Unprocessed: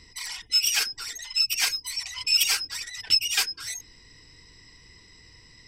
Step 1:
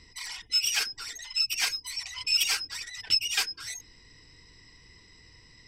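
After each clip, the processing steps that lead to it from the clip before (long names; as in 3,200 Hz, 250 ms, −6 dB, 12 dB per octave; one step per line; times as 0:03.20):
high-shelf EQ 8,900 Hz −7 dB
level −2 dB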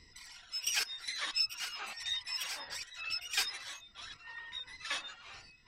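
square-wave tremolo 1.5 Hz, depth 65%, duty 25%
delay with pitch and tempo change per echo 133 ms, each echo −6 semitones, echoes 3, each echo −6 dB
level −5 dB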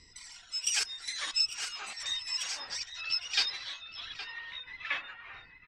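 low-pass filter sweep 7,900 Hz → 1,900 Hz, 0:02.14–0:05.40
slap from a distant wall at 140 metres, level −7 dB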